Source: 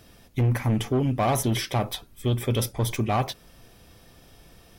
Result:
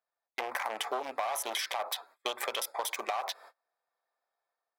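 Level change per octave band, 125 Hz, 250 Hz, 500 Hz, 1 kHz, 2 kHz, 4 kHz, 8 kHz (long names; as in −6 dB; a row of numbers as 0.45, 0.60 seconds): below −40 dB, −25.0 dB, −9.0 dB, −4.5 dB, −1.0 dB, −2.0 dB, −4.5 dB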